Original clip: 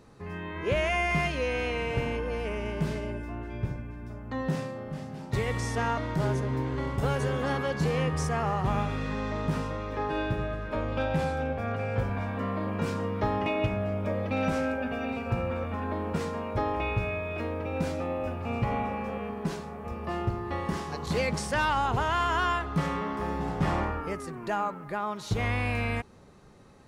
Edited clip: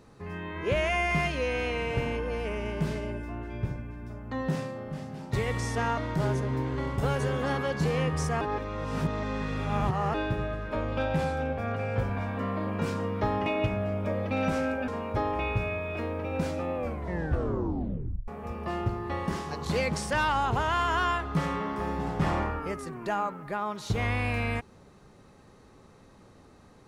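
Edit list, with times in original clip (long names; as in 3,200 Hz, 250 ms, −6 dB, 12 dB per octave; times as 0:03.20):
0:08.41–0:10.14: reverse
0:14.88–0:16.29: remove
0:18.16: tape stop 1.53 s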